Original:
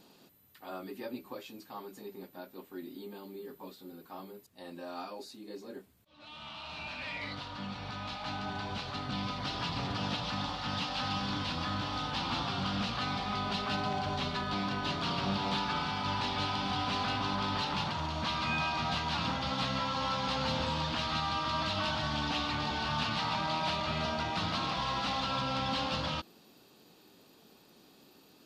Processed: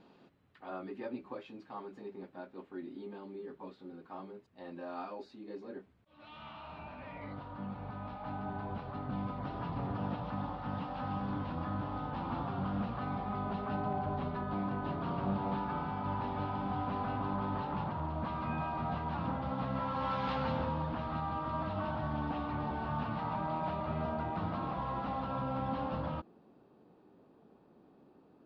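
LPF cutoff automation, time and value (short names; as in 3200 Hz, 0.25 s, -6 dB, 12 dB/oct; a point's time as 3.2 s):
6.36 s 2200 Hz
6.92 s 1000 Hz
19.66 s 1000 Hz
20.28 s 2100 Hz
20.81 s 1000 Hz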